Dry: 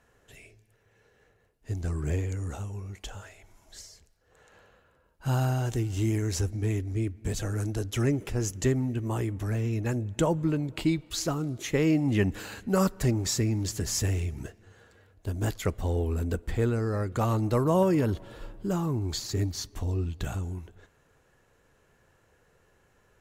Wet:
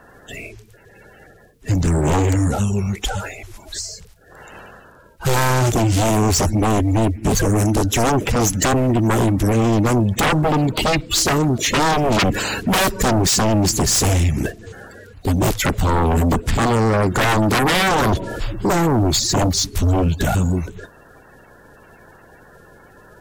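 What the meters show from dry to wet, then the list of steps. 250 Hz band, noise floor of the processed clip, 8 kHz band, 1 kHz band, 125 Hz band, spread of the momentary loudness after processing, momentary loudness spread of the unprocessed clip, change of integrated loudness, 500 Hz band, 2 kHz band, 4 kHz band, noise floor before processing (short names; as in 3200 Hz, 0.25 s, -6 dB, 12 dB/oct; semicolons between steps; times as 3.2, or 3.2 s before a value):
+10.5 dB, -48 dBFS, +15.0 dB, +17.5 dB, +9.5 dB, 12 LU, 12 LU, +11.0 dB, +10.5 dB, +17.0 dB, +16.5 dB, -66 dBFS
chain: bin magnitudes rounded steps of 30 dB; sine folder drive 15 dB, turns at -13 dBFS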